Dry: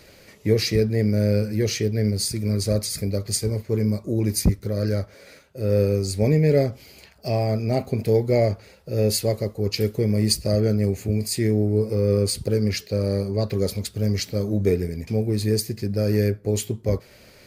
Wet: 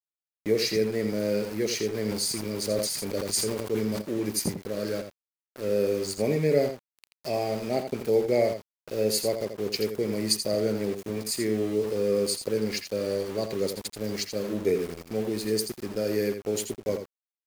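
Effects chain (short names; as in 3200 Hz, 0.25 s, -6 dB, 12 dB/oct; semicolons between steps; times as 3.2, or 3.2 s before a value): HPF 250 Hz 12 dB/oct; sample gate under -34.5 dBFS; echo 83 ms -8.5 dB; 2.01–4.02 sustainer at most 38 dB/s; gain -3 dB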